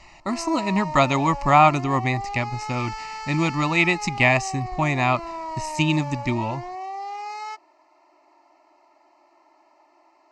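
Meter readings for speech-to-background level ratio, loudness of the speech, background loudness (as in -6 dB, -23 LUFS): 11.5 dB, -22.0 LUFS, -33.5 LUFS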